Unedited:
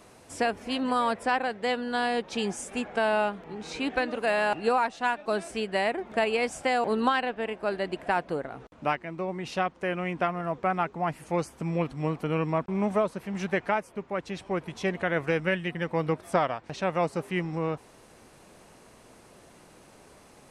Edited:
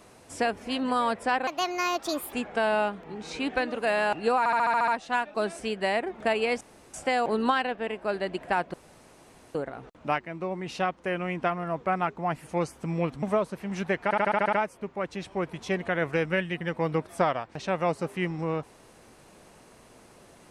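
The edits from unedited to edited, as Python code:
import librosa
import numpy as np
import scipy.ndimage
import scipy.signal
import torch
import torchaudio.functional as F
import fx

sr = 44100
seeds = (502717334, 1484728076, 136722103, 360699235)

y = fx.edit(x, sr, fx.speed_span(start_s=1.47, length_s=1.26, speed=1.47),
    fx.stutter(start_s=4.79, slice_s=0.07, count=8),
    fx.insert_room_tone(at_s=6.52, length_s=0.33),
    fx.insert_room_tone(at_s=8.32, length_s=0.81),
    fx.cut(start_s=12.0, length_s=0.86),
    fx.stutter(start_s=13.67, slice_s=0.07, count=8), tone=tone)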